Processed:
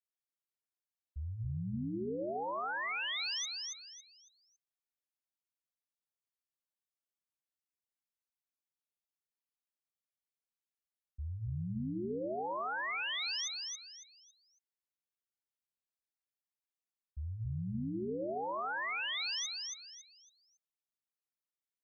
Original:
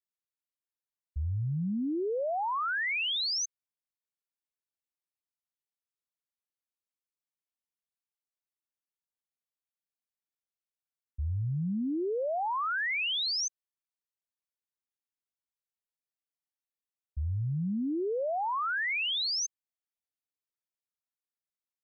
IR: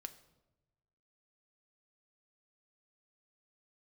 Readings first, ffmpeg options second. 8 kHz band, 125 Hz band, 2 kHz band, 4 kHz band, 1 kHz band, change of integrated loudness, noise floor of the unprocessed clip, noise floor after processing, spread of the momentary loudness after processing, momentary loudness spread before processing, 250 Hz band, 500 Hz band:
n/a, -6.5 dB, -6.0 dB, -6.0 dB, -6.5 dB, -6.5 dB, under -85 dBFS, under -85 dBFS, 13 LU, 8 LU, -6.5 dB, -6.5 dB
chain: -filter_complex "[0:a]bandreject=f=99.52:t=h:w=4,bandreject=f=199.04:t=h:w=4,bandreject=f=298.56:t=h:w=4,bandreject=f=398.08:t=h:w=4,bandreject=f=497.6:t=h:w=4,bandreject=f=597.12:t=h:w=4,bandreject=f=696.64:t=h:w=4,bandreject=f=796.16:t=h:w=4,bandreject=f=895.68:t=h:w=4,bandreject=f=995.2:t=h:w=4,bandreject=f=1.09472k:t=h:w=4,asplit=2[a][b];[b]aecho=0:1:277|554|831|1108:0.708|0.212|0.0637|0.0191[c];[a][c]amix=inputs=2:normalize=0,volume=-8dB"

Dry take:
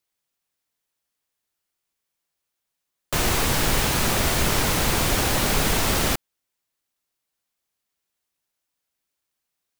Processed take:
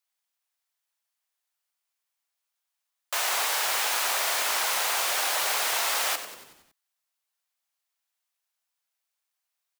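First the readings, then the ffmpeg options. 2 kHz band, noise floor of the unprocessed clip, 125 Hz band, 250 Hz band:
-2.0 dB, -82 dBFS, under -40 dB, -27.0 dB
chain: -filter_complex "[0:a]highpass=f=660:w=0.5412,highpass=f=660:w=1.3066,asplit=2[a][b];[b]asplit=6[c][d][e][f][g][h];[c]adelay=93,afreqshift=-87,volume=-11.5dB[i];[d]adelay=186,afreqshift=-174,volume=-16.7dB[j];[e]adelay=279,afreqshift=-261,volume=-21.9dB[k];[f]adelay=372,afreqshift=-348,volume=-27.1dB[l];[g]adelay=465,afreqshift=-435,volume=-32.3dB[m];[h]adelay=558,afreqshift=-522,volume=-37.5dB[n];[i][j][k][l][m][n]amix=inputs=6:normalize=0[o];[a][o]amix=inputs=2:normalize=0,volume=-2.5dB"

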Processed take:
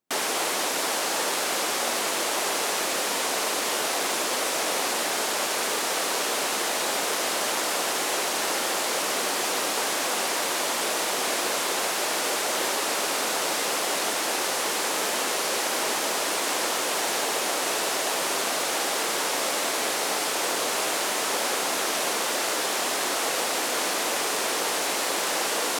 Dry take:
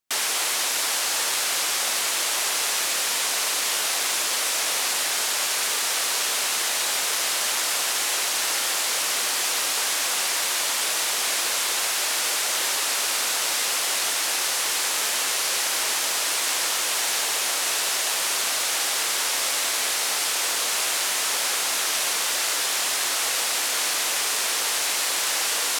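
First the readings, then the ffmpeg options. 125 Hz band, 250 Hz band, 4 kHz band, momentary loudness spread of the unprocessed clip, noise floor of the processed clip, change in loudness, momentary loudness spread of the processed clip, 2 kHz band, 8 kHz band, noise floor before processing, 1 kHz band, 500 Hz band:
n/a, +9.5 dB, -4.0 dB, 0 LU, -27 dBFS, -3.0 dB, 0 LU, -1.5 dB, -4.5 dB, -25 dBFS, +3.0 dB, +7.5 dB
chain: -af "highpass=170,tiltshelf=f=930:g=8.5,volume=3.5dB"

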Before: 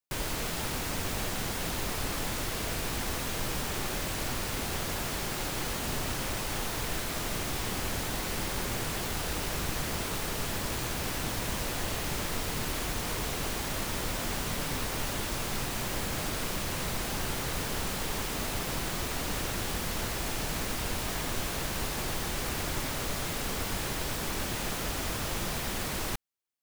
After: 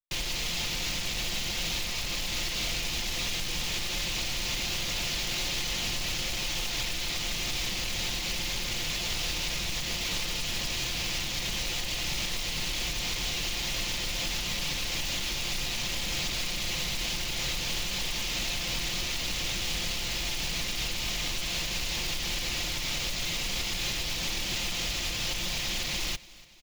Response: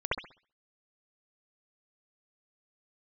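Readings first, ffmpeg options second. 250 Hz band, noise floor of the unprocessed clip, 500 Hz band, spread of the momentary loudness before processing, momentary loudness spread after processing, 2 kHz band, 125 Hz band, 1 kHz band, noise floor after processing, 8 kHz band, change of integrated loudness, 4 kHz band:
-4.5 dB, -34 dBFS, -5.5 dB, 0 LU, 1 LU, +2.5 dB, -3.0 dB, -5.5 dB, -33 dBFS, +2.0 dB, +2.5 dB, +7.5 dB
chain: -filter_complex "[0:a]aemphasis=mode=reproduction:type=75kf,bandreject=f=400:w=12,anlmdn=0.251,aecho=1:1:5.7:0.4,acrossover=split=100[a][b];[a]acontrast=50[c];[c][b]amix=inputs=2:normalize=0,alimiter=limit=-23.5dB:level=0:latency=1:release=142,aexciter=amount=8.2:drive=6.1:freq=2.2k,aresample=16000,asoftclip=type=tanh:threshold=-27.5dB,aresample=44100,acrusher=bits=2:mode=log:mix=0:aa=0.000001,aecho=1:1:289|578|867|1156:0.0891|0.049|0.027|0.0148"

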